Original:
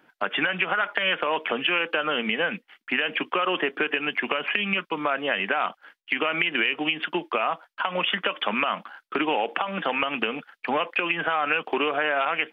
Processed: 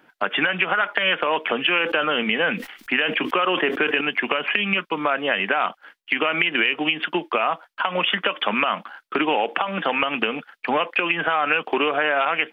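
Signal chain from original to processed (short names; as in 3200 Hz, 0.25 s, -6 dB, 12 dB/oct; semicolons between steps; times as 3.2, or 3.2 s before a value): 1.74–4.01 sustainer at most 80 dB/s; gain +3.5 dB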